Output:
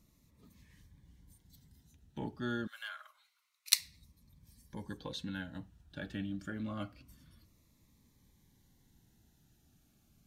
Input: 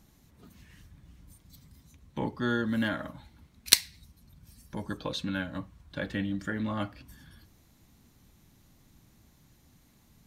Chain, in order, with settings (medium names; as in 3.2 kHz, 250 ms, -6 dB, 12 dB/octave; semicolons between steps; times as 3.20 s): 2.67–3.79 s: inverse Chebyshev high-pass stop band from 230 Hz, stop band 70 dB; Shepard-style phaser falling 0.27 Hz; trim -7 dB